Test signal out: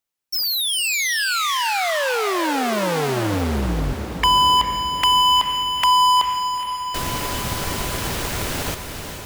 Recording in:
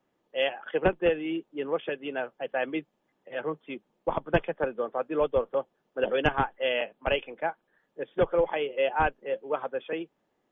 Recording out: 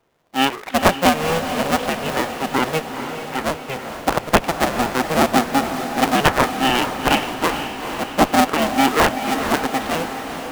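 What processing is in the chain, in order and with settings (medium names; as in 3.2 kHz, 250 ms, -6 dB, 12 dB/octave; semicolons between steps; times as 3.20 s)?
cycle switcher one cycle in 2, inverted; echo that smears into a reverb 457 ms, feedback 62%, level -8 dB; trim +9 dB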